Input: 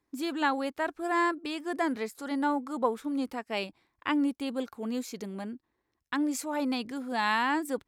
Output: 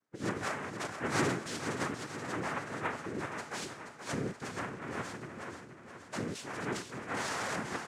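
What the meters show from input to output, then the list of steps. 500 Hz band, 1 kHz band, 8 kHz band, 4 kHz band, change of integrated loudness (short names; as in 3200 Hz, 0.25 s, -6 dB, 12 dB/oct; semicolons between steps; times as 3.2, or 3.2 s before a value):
-5.0 dB, -7.5 dB, +1.5 dB, -4.5 dB, -6.0 dB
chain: bin magnitudes rounded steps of 30 dB; in parallel at -1 dB: limiter -26 dBFS, peak gain reduction 11 dB; on the sum: resonator 170 Hz, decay 0.5 s, harmonics all, mix 80%; noise vocoder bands 3; feedback echo 0.477 s, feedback 58%, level -9 dB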